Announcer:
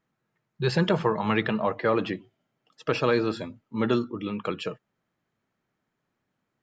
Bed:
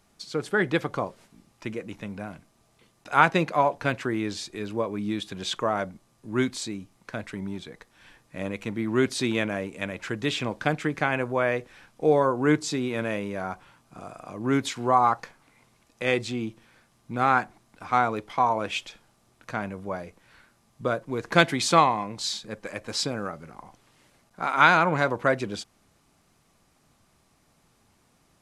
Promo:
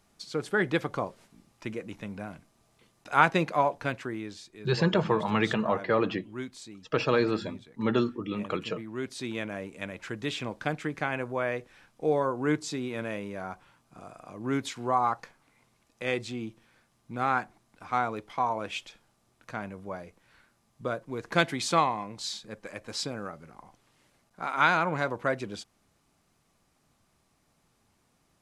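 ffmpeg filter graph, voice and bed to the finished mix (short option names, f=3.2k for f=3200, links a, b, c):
-filter_complex "[0:a]adelay=4050,volume=-1.5dB[a];[1:a]volume=4.5dB,afade=t=out:st=3.56:d=0.88:silence=0.316228,afade=t=in:st=8.97:d=0.77:silence=0.446684[b];[a][b]amix=inputs=2:normalize=0"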